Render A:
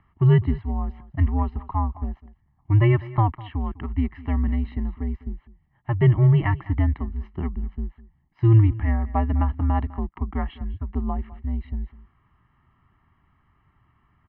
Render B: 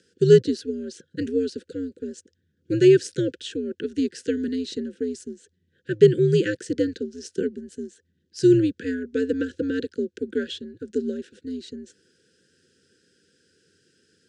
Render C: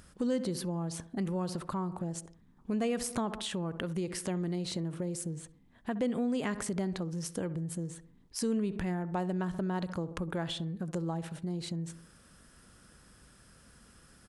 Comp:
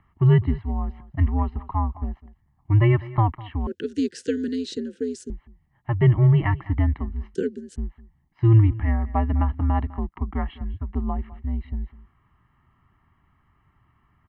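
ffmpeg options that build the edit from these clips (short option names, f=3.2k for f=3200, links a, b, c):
-filter_complex "[1:a]asplit=2[a][b];[0:a]asplit=3[c][d][e];[c]atrim=end=3.672[f];[a]atrim=start=3.668:end=5.302[g];[d]atrim=start=5.298:end=7.352[h];[b]atrim=start=7.348:end=7.762[i];[e]atrim=start=7.758[j];[f][g]acrossfade=d=0.004:c1=hsin:c2=hsin[k];[k][h]acrossfade=d=0.004:c1=hsin:c2=hsin[l];[l][i]acrossfade=d=0.004:c1=hsin:c2=hsin[m];[m][j]acrossfade=d=0.004:c1=hsin:c2=hsin"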